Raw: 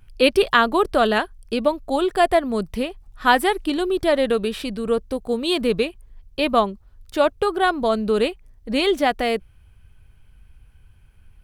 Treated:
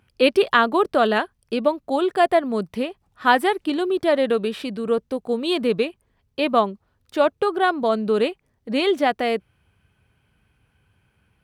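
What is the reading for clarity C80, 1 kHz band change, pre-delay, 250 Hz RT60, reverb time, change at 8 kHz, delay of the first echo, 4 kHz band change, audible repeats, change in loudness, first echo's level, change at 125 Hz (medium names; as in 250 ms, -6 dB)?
no reverb, -0.5 dB, no reverb, no reverb, no reverb, no reading, no echo, -2.5 dB, no echo, -0.5 dB, no echo, -2.0 dB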